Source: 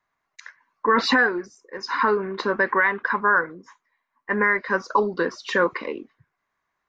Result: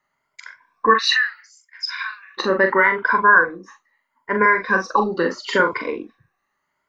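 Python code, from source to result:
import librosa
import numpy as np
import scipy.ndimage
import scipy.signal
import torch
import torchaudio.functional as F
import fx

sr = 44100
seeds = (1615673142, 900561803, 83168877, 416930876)

y = fx.spec_ripple(x, sr, per_octave=1.7, drift_hz=0.76, depth_db=12)
y = fx.cheby2_highpass(y, sr, hz=310.0, order=4, stop_db=80, at=(0.93, 2.37), fade=0.02)
y = fx.doubler(y, sr, ms=42.0, db=-6.0)
y = y * 10.0 ** (2.0 / 20.0)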